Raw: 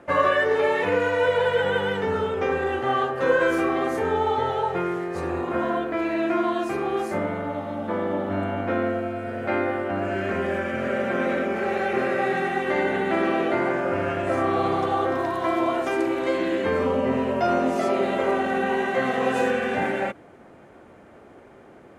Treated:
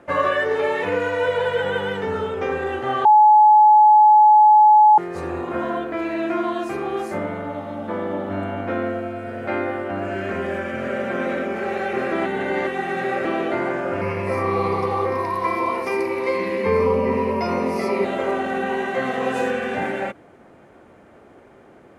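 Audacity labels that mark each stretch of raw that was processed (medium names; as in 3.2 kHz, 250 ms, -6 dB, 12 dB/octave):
3.050000	4.980000	bleep 851 Hz -8 dBFS
12.120000	13.250000	reverse
14.010000	18.050000	rippled EQ curve crests per octave 0.87, crest to trough 14 dB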